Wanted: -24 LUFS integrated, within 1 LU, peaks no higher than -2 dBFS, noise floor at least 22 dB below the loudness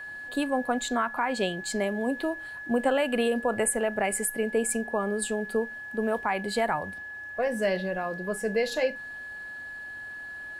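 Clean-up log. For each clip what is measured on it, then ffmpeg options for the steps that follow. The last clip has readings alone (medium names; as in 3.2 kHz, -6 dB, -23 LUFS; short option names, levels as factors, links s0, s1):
steady tone 1.7 kHz; tone level -37 dBFS; loudness -29.0 LUFS; peak level -14.5 dBFS; loudness target -24.0 LUFS
-> -af "bandreject=f=1700:w=30"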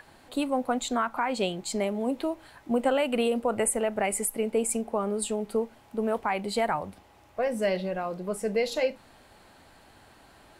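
steady tone not found; loudness -28.5 LUFS; peak level -15.0 dBFS; loudness target -24.0 LUFS
-> -af "volume=1.68"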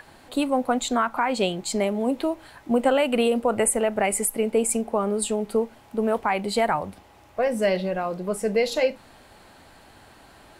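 loudness -24.0 LUFS; peak level -10.5 dBFS; noise floor -52 dBFS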